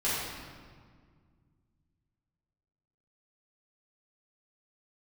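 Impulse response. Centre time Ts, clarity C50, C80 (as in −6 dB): 110 ms, −2.0 dB, 0.0 dB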